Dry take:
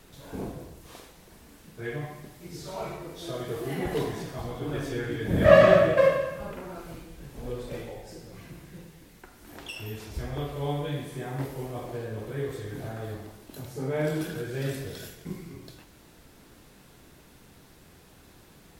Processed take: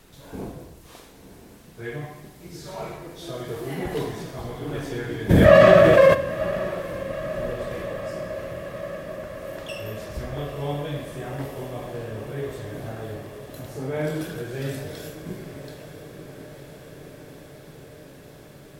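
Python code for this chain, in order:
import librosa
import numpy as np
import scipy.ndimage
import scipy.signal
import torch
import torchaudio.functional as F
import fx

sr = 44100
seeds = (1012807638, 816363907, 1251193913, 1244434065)

p1 = x + fx.echo_diffused(x, sr, ms=946, feedback_pct=77, wet_db=-12, dry=0)
p2 = fx.env_flatten(p1, sr, amount_pct=70, at=(5.29, 6.13), fade=0.02)
y = p2 * librosa.db_to_amplitude(1.0)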